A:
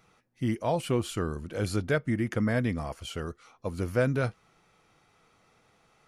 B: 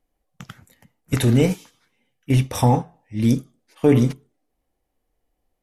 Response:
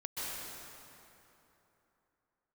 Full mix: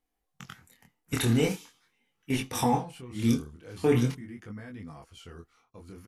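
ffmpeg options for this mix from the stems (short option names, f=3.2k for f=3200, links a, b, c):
-filter_complex "[0:a]alimiter=limit=-24dB:level=0:latency=1:release=23,agate=range=-33dB:threshold=-57dB:ratio=3:detection=peak,adelay=2100,volume=-7.5dB[a];[1:a]lowshelf=f=350:g=-7.5,volume=0dB[b];[a][b]amix=inputs=2:normalize=0,equalizer=f=590:t=o:w=0.23:g=-11.5,flanger=delay=19.5:depth=7.1:speed=0.42"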